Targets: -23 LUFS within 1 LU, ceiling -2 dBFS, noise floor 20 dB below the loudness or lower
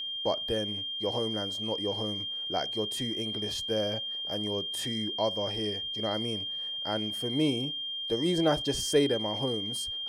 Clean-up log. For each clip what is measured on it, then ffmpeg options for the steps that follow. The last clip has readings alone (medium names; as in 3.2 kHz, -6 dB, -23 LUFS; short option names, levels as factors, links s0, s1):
steady tone 3.2 kHz; tone level -33 dBFS; loudness -30.0 LUFS; peak level -12.5 dBFS; loudness target -23.0 LUFS
-> -af "bandreject=f=3200:w=30"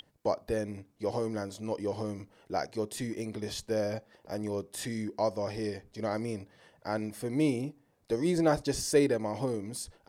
steady tone not found; loudness -33.0 LUFS; peak level -13.0 dBFS; loudness target -23.0 LUFS
-> -af "volume=3.16"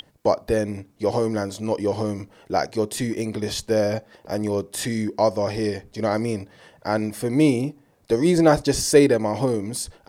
loudness -23.0 LUFS; peak level -3.0 dBFS; noise floor -59 dBFS